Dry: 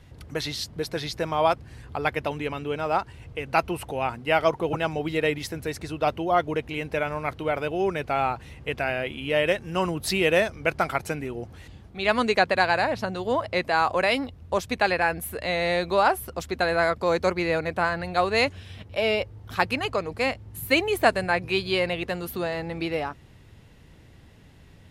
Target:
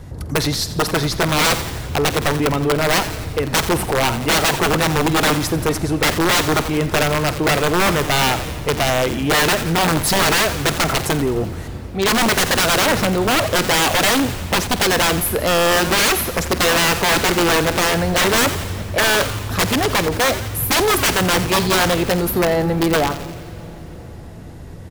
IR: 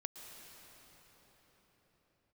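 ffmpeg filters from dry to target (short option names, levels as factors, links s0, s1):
-filter_complex "[0:a]equalizer=f=2800:t=o:w=1.4:g=-11.5,aeval=exprs='(mod(12.6*val(0)+1,2)-1)/12.6':c=same,asplit=7[s0][s1][s2][s3][s4][s5][s6];[s1]adelay=86,afreqshift=-150,volume=0.178[s7];[s2]adelay=172,afreqshift=-300,volume=0.104[s8];[s3]adelay=258,afreqshift=-450,volume=0.0596[s9];[s4]adelay=344,afreqshift=-600,volume=0.0347[s10];[s5]adelay=430,afreqshift=-750,volume=0.0202[s11];[s6]adelay=516,afreqshift=-900,volume=0.0116[s12];[s0][s7][s8][s9][s10][s11][s12]amix=inputs=7:normalize=0,asplit=2[s13][s14];[1:a]atrim=start_sample=2205,adelay=49[s15];[s14][s15]afir=irnorm=-1:irlink=0,volume=0.2[s16];[s13][s16]amix=inputs=2:normalize=0,aeval=exprs='0.133*(cos(1*acos(clip(val(0)/0.133,-1,1)))-cos(1*PI/2))+0.0335*(cos(5*acos(clip(val(0)/0.133,-1,1)))-cos(5*PI/2))':c=same,volume=2.66"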